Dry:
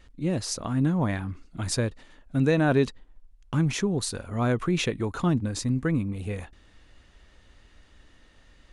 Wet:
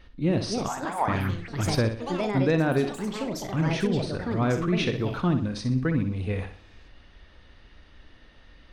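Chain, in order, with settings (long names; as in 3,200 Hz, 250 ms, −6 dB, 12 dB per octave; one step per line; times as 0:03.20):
Savitzky-Golay smoothing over 15 samples
on a send: flutter between parallel walls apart 10.7 metres, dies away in 0.44 s
on the sum: speech leveller within 3 dB 0.5 s
0:00.68–0:01.08: high-pass with resonance 790 Hz, resonance Q 4.9
delay with pitch and tempo change per echo 342 ms, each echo +5 semitones, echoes 3, each echo −6 dB
0:03.87–0:04.31: high-shelf EQ 3,300 Hz −10.5 dB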